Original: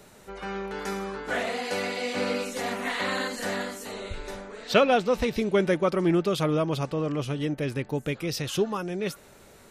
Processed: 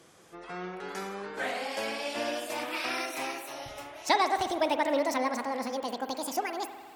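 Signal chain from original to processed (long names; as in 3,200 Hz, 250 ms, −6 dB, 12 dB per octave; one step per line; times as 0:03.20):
gliding playback speed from 82% → 197%
high-pass filter 250 Hz 6 dB per octave
spring reverb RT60 1.7 s, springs 50 ms, chirp 55 ms, DRR 8.5 dB
level −4 dB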